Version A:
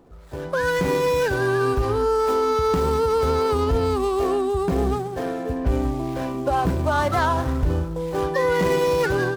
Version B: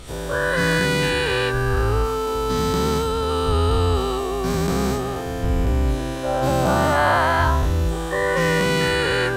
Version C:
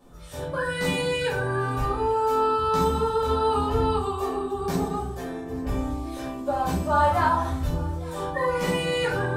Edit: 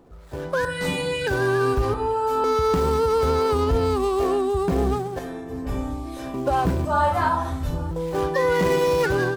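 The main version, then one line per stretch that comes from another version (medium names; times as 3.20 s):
A
0.65–1.27 s: from C
1.94–2.44 s: from C
5.19–6.34 s: from C
6.85–7.91 s: from C
not used: B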